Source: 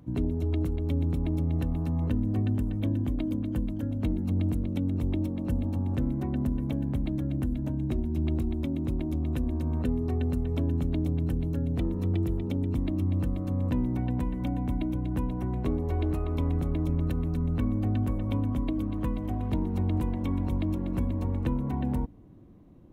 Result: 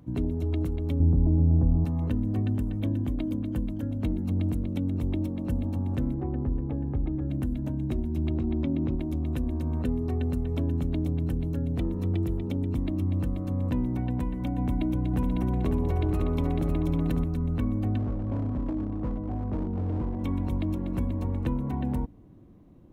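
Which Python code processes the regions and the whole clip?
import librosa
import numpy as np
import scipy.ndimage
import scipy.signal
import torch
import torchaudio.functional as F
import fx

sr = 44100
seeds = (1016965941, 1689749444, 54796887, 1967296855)

y = fx.chain(x, sr, fx.lowpass(hz=1000.0, slope=24),
    fx.low_shelf(hz=210.0, db=8.5), at=(1.0, 1.85))
y = fx.chain(y, sr, fx.lowpass(hz=1400.0, slope=12),
    fx.comb(ms=2.4, depth=0.53), at=(6.14, 7.3))
y = fx.chain(y, sr, fx.highpass(hz=68.0, slope=12),
    fx.air_absorb(metres=180.0),
    fx.env_flatten(amount_pct=100), at=(8.3, 8.95))
y = fx.chain(y, sr, fx.echo_single(ms=552, db=-5.0),
    fx.env_flatten(amount_pct=50), at=(14.58, 17.24))
y = fx.chain(y, sr, fx.lowpass(hz=1100.0, slope=12),
    fx.clip_hard(threshold_db=-25.0), at=(17.98, 20.19))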